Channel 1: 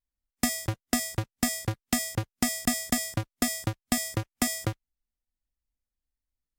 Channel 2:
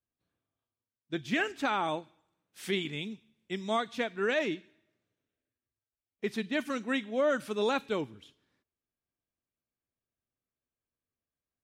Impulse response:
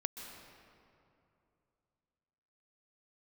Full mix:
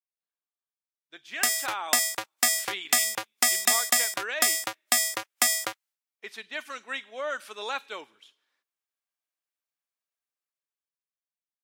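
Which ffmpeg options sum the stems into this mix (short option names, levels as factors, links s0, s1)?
-filter_complex "[0:a]agate=range=0.0224:threshold=0.002:ratio=3:detection=peak,adelay=1000,volume=0.596[s0];[1:a]volume=0.266[s1];[s0][s1]amix=inputs=2:normalize=0,highpass=850,dynaudnorm=f=230:g=11:m=4.47"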